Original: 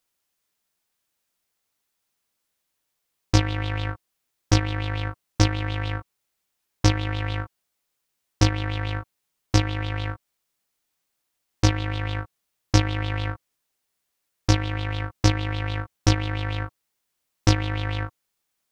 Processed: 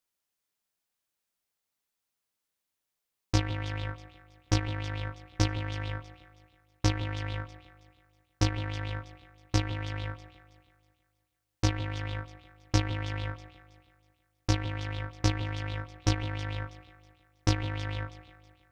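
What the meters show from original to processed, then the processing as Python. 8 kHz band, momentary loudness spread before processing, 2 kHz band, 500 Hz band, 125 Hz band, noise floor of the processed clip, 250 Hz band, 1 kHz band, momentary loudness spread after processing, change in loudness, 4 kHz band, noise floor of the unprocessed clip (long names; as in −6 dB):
−7.5 dB, 11 LU, −7.5 dB, −7.0 dB, −7.0 dB, −85 dBFS, −7.5 dB, −7.5 dB, 11 LU, −7.5 dB, −7.5 dB, −78 dBFS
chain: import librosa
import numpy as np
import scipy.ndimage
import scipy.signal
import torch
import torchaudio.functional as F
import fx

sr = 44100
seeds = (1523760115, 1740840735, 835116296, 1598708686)

y = fx.echo_alternate(x, sr, ms=161, hz=940.0, feedback_pct=58, wet_db=-12)
y = y * 10.0 ** (-7.5 / 20.0)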